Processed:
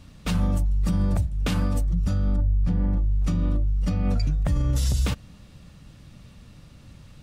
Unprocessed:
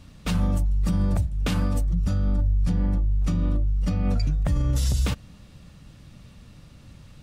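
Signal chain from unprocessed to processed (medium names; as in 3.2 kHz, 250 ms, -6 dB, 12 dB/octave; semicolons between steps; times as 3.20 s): 2.36–2.97 s: low-pass 2 kHz 6 dB/octave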